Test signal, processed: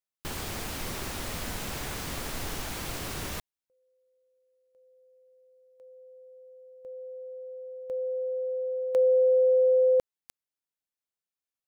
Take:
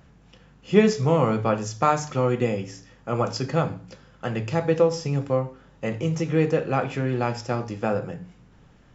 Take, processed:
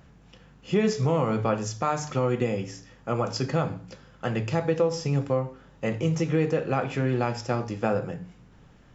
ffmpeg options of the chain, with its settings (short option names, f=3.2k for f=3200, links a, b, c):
-af "alimiter=limit=-13.5dB:level=0:latency=1:release=183"